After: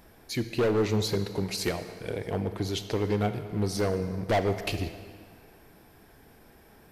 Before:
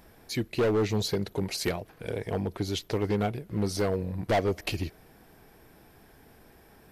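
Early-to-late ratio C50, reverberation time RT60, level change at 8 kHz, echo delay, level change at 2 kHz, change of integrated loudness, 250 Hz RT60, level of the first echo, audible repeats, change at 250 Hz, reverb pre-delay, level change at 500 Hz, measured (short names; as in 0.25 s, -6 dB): 10.0 dB, 2.1 s, +0.5 dB, none, +0.5 dB, +0.5 dB, 1.8 s, none, none, +0.5 dB, 31 ms, +0.5 dB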